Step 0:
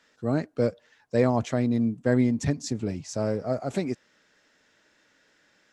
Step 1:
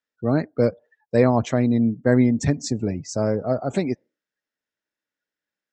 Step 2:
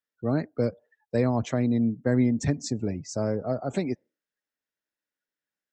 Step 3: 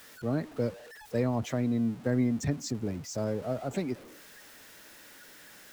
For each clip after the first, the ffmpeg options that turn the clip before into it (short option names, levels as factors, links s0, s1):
-af "afftdn=nr=31:nf=-48,volume=1.78"
-filter_complex "[0:a]acrossover=split=300|3000[s0][s1][s2];[s1]acompressor=threshold=0.1:ratio=6[s3];[s0][s3][s2]amix=inputs=3:normalize=0,volume=0.596"
-af "aeval=exprs='val(0)+0.5*0.0119*sgn(val(0))':c=same,volume=0.562"